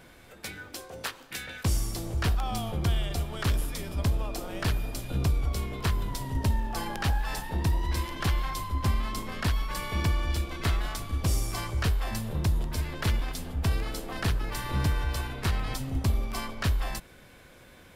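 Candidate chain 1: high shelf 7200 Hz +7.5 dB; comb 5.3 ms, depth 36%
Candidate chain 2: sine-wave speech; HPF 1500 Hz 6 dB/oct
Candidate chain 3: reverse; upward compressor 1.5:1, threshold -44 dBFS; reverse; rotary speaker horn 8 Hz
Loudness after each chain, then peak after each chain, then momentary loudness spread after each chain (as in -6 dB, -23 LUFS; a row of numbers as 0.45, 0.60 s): -30.5, -32.0, -32.5 LUFS; -14.5, -13.5, -17.0 dBFS; 5, 11, 7 LU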